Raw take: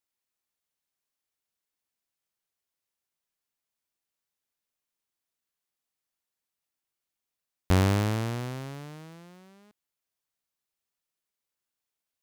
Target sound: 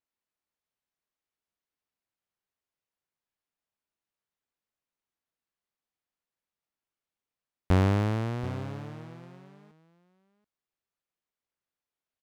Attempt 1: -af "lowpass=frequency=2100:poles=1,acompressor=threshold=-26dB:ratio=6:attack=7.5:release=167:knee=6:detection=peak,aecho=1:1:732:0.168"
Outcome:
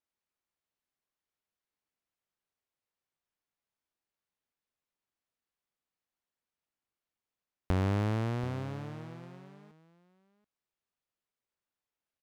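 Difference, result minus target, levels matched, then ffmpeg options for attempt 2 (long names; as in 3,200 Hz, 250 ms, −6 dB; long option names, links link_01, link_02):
downward compressor: peak gain reduction +7.5 dB
-af "lowpass=frequency=2100:poles=1,aecho=1:1:732:0.168"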